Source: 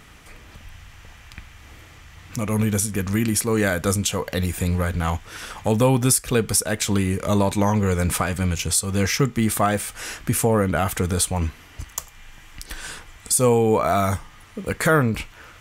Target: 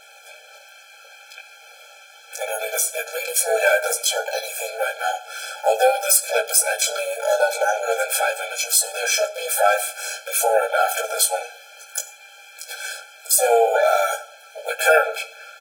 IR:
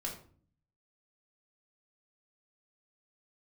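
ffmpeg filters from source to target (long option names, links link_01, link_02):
-filter_complex "[0:a]aecho=1:1:5.1:0.68,flanger=delay=18.5:depth=3.1:speed=0.48,asplit=2[link_01][link_02];[link_02]asetrate=66075,aresample=44100,atempo=0.66742,volume=-6dB[link_03];[link_01][link_03]amix=inputs=2:normalize=0,asplit=2[link_04][link_05];[1:a]atrim=start_sample=2205,asetrate=26901,aresample=44100,adelay=31[link_06];[link_05][link_06]afir=irnorm=-1:irlink=0,volume=-17.5dB[link_07];[link_04][link_07]amix=inputs=2:normalize=0,afftfilt=real='re*eq(mod(floor(b*sr/1024/440),2),1)':imag='im*eq(mod(floor(b*sr/1024/440),2),1)':win_size=1024:overlap=0.75,volume=7.5dB"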